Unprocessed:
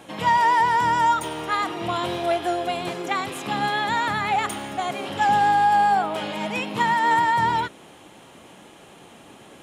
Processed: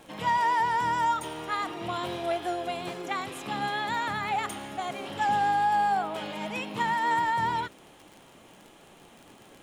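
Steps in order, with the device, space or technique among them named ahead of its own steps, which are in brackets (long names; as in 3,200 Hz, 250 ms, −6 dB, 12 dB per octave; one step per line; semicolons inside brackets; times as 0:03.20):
vinyl LP (tape wow and flutter 16 cents; surface crackle 32 per second −32 dBFS; pink noise bed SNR 38 dB)
level −6.5 dB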